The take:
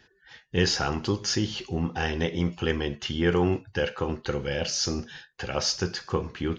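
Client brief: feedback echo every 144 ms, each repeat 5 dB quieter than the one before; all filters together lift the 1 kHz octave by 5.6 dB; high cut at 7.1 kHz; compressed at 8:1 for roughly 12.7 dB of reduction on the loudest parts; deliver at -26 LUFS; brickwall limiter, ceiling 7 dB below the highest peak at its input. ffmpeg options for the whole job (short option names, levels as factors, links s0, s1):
-af "lowpass=7100,equalizer=f=1000:t=o:g=7.5,acompressor=threshold=0.0282:ratio=8,alimiter=level_in=1.12:limit=0.0631:level=0:latency=1,volume=0.891,aecho=1:1:144|288|432|576|720|864|1008:0.562|0.315|0.176|0.0988|0.0553|0.031|0.0173,volume=2.99"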